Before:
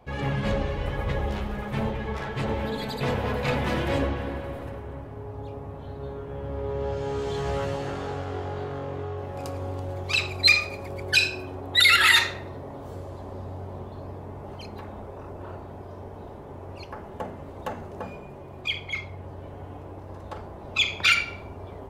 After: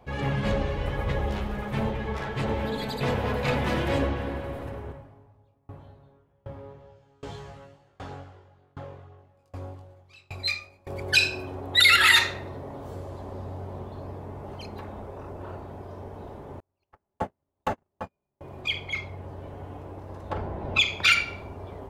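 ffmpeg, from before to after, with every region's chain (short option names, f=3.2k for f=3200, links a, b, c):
-filter_complex "[0:a]asettb=1/sr,asplit=3[a][b][c];[a]atrim=end=4.924[d];[b]atrim=start=4.92:end=10.87,asetpts=PTS-STARTPTS,afade=t=in:d=0.004:c=qsin,afade=t=out:st=5.946:d=0.004:c=qsin,equalizer=f=430:t=o:w=0.22:g=-7.5,flanger=delay=19.5:depth=2.2:speed=2,aeval=exprs='val(0)*pow(10,-32*if(lt(mod(1.3*n/s,1),2*abs(1.3)/1000),1-mod(1.3*n/s,1)/(2*abs(1.3)/1000),(mod(1.3*n/s,1)-2*abs(1.3)/1000)/(1-2*abs(1.3)/1000))/20)':c=same[e];[c]atrim=start=10.866[f];[d][e]acrossfade=d=0.004:c1=hsin:c2=qsin[g];[g][f]acrossfade=d=0.004:c1=qsin:c2=hsin,asettb=1/sr,asplit=3[h][i][j];[h]atrim=end=16.604[k];[i]atrim=start=16.6:end=18.41,asetpts=PTS-STARTPTS,afade=t=in:d=0.004:c=qsin,afade=t=out:st=1.806:d=0.004:c=qsin,agate=range=-49dB:threshold=-33dB:ratio=16:release=100:detection=peak,bandreject=f=480:w=8,acontrast=69[l];[j]atrim=start=18.406[m];[k][l]acrossfade=d=0.004:c1=hsin:c2=qsin[n];[n][m]acrossfade=d=0.004:c1=qsin:c2=hsin,asettb=1/sr,asplit=3[o][p][q];[o]atrim=end=20.304[r];[p]atrim=start=20.3:end=20.8,asetpts=PTS-STARTPTS,afade=t=in:d=0.004:c=qsin,afade=t=out:st=0.496:d=0.004:c=qsin,bass=f=250:g=2,treble=f=4k:g=-11,acontrast=44,bandreject=f=1.2k:w=13[s];[q]atrim=start=20.796[t];[r][s]acrossfade=d=0.004:c1=hsin:c2=qsin[u];[u][t]acrossfade=d=0.004:c1=qsin:c2=hsin"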